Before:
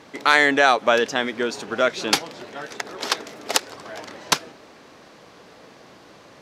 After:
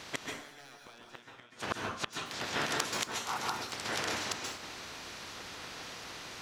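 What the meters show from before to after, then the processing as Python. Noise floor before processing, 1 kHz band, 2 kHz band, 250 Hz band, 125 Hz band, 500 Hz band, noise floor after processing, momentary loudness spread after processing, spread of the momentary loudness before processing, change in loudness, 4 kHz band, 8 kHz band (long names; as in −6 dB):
−49 dBFS, −14.5 dB, −16.0 dB, −15.0 dB, −4.5 dB, −19.0 dB, −55 dBFS, 19 LU, 20 LU, −16.0 dB, −11.5 dB, −9.5 dB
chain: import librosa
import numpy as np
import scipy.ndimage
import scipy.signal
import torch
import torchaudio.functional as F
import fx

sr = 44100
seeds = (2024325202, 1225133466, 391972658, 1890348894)

y = fx.spec_clip(x, sr, under_db=18)
y = 10.0 ** (-9.0 / 20.0) * (np.abs((y / 10.0 ** (-9.0 / 20.0) + 3.0) % 4.0 - 2.0) - 1.0)
y = fx.spec_paint(y, sr, seeds[0], shape='noise', start_s=3.11, length_s=0.27, low_hz=730.0, high_hz=1500.0, level_db=-36.0)
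y = fx.gate_flip(y, sr, shuts_db=-17.0, range_db=-36)
y = fx.rev_plate(y, sr, seeds[1], rt60_s=0.57, hf_ratio=0.8, predelay_ms=120, drr_db=0.5)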